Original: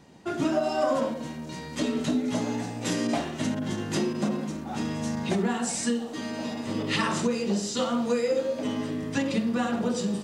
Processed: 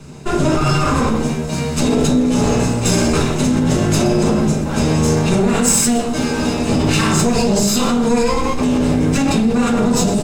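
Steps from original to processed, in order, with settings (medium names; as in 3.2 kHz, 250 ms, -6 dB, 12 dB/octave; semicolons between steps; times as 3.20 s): comb filter that takes the minimum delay 0.76 ms; echo from a far wall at 21 m, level -13 dB; reverberation RT60 0.35 s, pre-delay 5 ms, DRR -1 dB; in parallel at +2 dB: compressor with a negative ratio -26 dBFS, ratio -1; on the sum: graphic EQ 125/500/8000 Hz +6/+7/+9 dB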